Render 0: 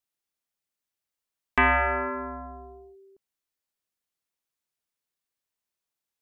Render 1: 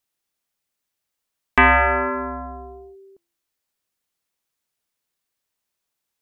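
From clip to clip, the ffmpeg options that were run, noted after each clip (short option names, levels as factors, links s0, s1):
-af "bandreject=f=341.1:t=h:w=4,bandreject=f=682.2:t=h:w=4,bandreject=f=1023.3:t=h:w=4,bandreject=f=1364.4:t=h:w=4,bandreject=f=1705.5:t=h:w=4,bandreject=f=2046.6:t=h:w=4,bandreject=f=2387.7:t=h:w=4,bandreject=f=2728.8:t=h:w=4,bandreject=f=3069.9:t=h:w=4,bandreject=f=3411:t=h:w=4,bandreject=f=3752.1:t=h:w=4,bandreject=f=4093.2:t=h:w=4,bandreject=f=4434.3:t=h:w=4,bandreject=f=4775.4:t=h:w=4,bandreject=f=5116.5:t=h:w=4,bandreject=f=5457.6:t=h:w=4,bandreject=f=5798.7:t=h:w=4,bandreject=f=6139.8:t=h:w=4,bandreject=f=6480.9:t=h:w=4,bandreject=f=6822:t=h:w=4,bandreject=f=7163.1:t=h:w=4,bandreject=f=7504.2:t=h:w=4,bandreject=f=7845.3:t=h:w=4,bandreject=f=8186.4:t=h:w=4,bandreject=f=8527.5:t=h:w=4,bandreject=f=8868.6:t=h:w=4,bandreject=f=9209.7:t=h:w=4,bandreject=f=9550.8:t=h:w=4,bandreject=f=9891.9:t=h:w=4,bandreject=f=10233:t=h:w=4,bandreject=f=10574.1:t=h:w=4,volume=2.24"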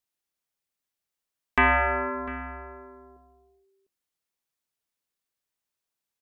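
-filter_complex "[0:a]asplit=2[s0][s1];[s1]adelay=699.7,volume=0.158,highshelf=f=4000:g=-15.7[s2];[s0][s2]amix=inputs=2:normalize=0,volume=0.473"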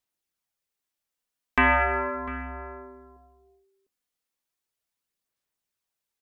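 -af "aphaser=in_gain=1:out_gain=1:delay=4.1:decay=0.29:speed=0.37:type=sinusoidal"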